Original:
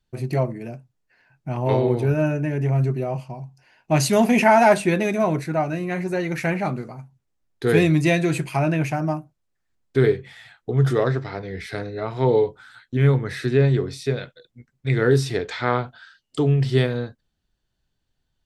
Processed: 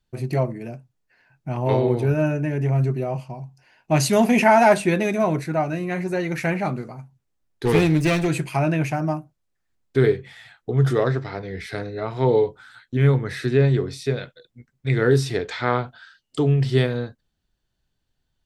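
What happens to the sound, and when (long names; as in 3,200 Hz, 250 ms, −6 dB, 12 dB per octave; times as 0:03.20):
0:07.65–0:08.28: lower of the sound and its delayed copy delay 0.37 ms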